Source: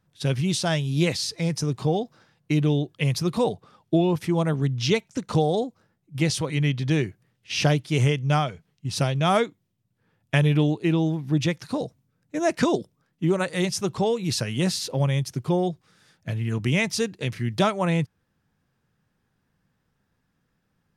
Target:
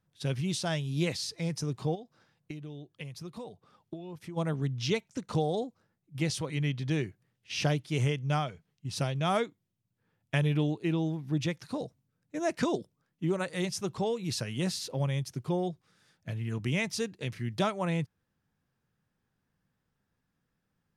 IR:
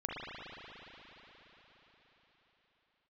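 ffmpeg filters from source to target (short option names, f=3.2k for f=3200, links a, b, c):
-filter_complex "[0:a]asplit=3[a][b][c];[a]afade=t=out:st=1.94:d=0.02[d];[b]acompressor=threshold=-31dB:ratio=16,afade=t=in:st=1.94:d=0.02,afade=t=out:st=4.36:d=0.02[e];[c]afade=t=in:st=4.36:d=0.02[f];[d][e][f]amix=inputs=3:normalize=0,volume=-7.5dB"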